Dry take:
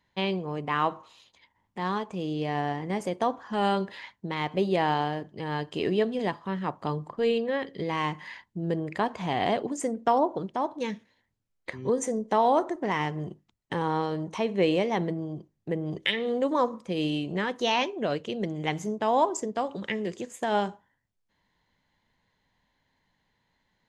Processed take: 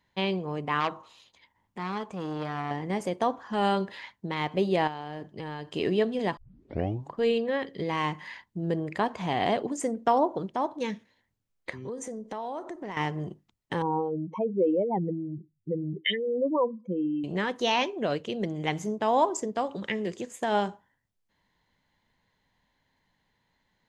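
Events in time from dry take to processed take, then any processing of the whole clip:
0.8–2.71 core saturation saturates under 1500 Hz
4.87–5.74 compressor 8:1, threshold -32 dBFS
6.37 tape start 0.76 s
11.7–12.97 compressor 3:1, threshold -36 dBFS
13.82–17.24 spectral contrast raised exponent 2.7

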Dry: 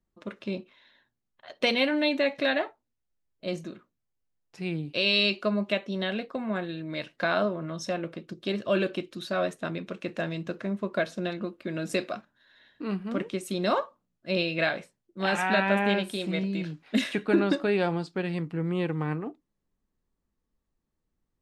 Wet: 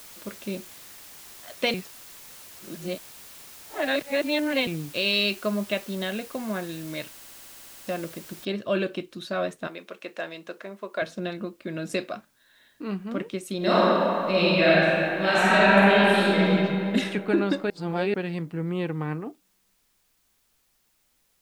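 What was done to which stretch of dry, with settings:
1.74–4.67 reverse
7.1 stutter in place 0.07 s, 11 plays
8.45 noise floor step -46 dB -69 dB
9.67–11.02 HPF 450 Hz
13.57–16.51 reverb throw, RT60 2.9 s, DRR -7.5 dB
17.7–18.14 reverse

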